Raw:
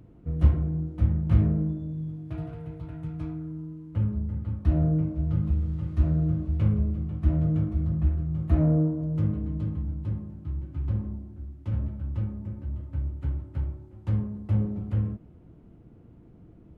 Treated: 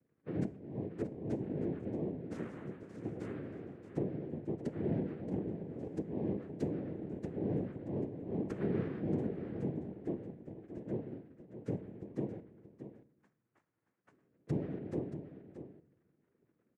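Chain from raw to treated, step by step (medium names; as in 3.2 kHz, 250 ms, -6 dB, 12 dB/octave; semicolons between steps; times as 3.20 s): expander on every frequency bin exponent 2; bass shelf 210 Hz +10.5 dB; compression 12:1, threshold -34 dBFS, peak gain reduction 28.5 dB; 12.39–14.47 s: auto-wah 470–1200 Hz, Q 6.9, up, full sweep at -36 dBFS; noise-vocoded speech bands 3; delay 628 ms -11.5 dB; reverberation RT60 0.90 s, pre-delay 6 ms, DRR 16 dB; trim +2 dB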